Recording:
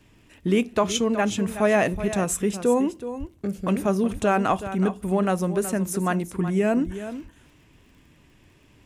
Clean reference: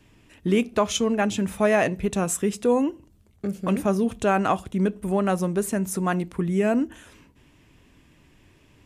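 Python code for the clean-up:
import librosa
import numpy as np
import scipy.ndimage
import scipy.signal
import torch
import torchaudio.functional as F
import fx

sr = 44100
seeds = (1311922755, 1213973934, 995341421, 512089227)

y = fx.fix_declick_ar(x, sr, threshold=6.5)
y = fx.fix_deplosive(y, sr, at_s=(1.92, 3.19, 4.12, 6.85))
y = fx.fix_echo_inverse(y, sr, delay_ms=373, level_db=-12.0)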